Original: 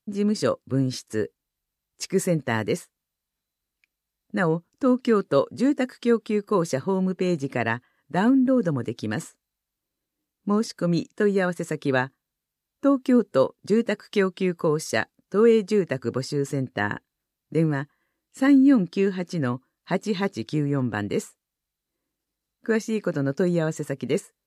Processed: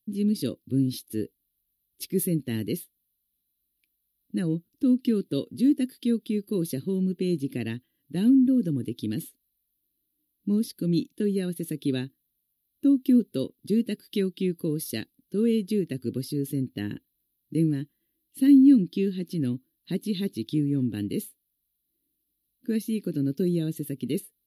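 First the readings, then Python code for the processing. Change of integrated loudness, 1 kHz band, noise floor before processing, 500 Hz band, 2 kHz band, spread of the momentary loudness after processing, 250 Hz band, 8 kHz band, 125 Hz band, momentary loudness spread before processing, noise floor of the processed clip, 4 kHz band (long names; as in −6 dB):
−2.5 dB, below −20 dB, −85 dBFS, −8.5 dB, −15.5 dB, 13 LU, 0.0 dB, −3.0 dB, −2.0 dB, 10 LU, −79 dBFS, −3.0 dB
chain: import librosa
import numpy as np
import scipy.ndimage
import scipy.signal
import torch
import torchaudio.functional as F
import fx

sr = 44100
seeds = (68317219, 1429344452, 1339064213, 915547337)

y = fx.curve_eq(x, sr, hz=(150.0, 320.0, 560.0, 1100.0, 3600.0, 7700.0, 11000.0), db=(0, 4, -15, -27, 4, -14, 14))
y = F.gain(torch.from_numpy(y), -2.5).numpy()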